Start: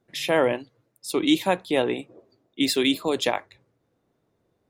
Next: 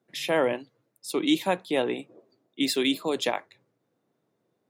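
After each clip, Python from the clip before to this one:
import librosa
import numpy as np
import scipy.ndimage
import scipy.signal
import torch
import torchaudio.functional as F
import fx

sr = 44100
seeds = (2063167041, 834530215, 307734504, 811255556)

y = scipy.signal.sosfilt(scipy.signal.butter(4, 130.0, 'highpass', fs=sr, output='sos'), x)
y = y * librosa.db_to_amplitude(-3.0)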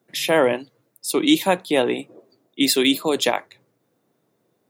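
y = fx.high_shelf(x, sr, hz=8500.0, db=8.5)
y = y * librosa.db_to_amplitude(6.5)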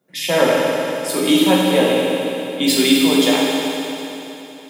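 y = fx.rev_fdn(x, sr, rt60_s=3.3, lf_ratio=1.0, hf_ratio=1.0, size_ms=33.0, drr_db=-6.0)
y = y * librosa.db_to_amplitude(-3.0)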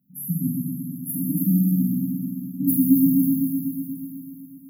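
y = fx.brickwall_bandstop(x, sr, low_hz=270.0, high_hz=11000.0)
y = y * librosa.db_to_amplitude(4.5)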